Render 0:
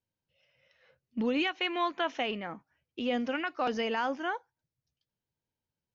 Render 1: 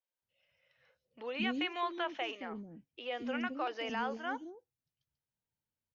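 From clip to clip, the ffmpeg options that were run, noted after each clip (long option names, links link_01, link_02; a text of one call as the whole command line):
ffmpeg -i in.wav -filter_complex "[0:a]acrossover=split=410|5200[link_01][link_02][link_03];[link_03]adelay=140[link_04];[link_01]adelay=220[link_05];[link_05][link_02][link_04]amix=inputs=3:normalize=0,volume=-4.5dB" out.wav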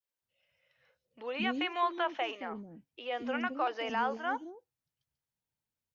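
ffmpeg -i in.wav -af "adynamicequalizer=threshold=0.00447:dfrequency=920:dqfactor=0.77:tfrequency=920:tqfactor=0.77:attack=5:release=100:ratio=0.375:range=3:mode=boostabove:tftype=bell" out.wav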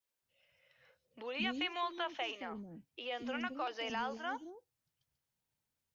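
ffmpeg -i in.wav -filter_complex "[0:a]acrossover=split=140|3000[link_01][link_02][link_03];[link_02]acompressor=threshold=-58dB:ratio=1.5[link_04];[link_01][link_04][link_03]amix=inputs=3:normalize=0,volume=3dB" out.wav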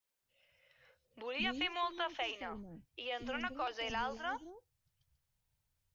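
ffmpeg -i in.wav -af "asubboost=boost=9.5:cutoff=81,volume=1dB" out.wav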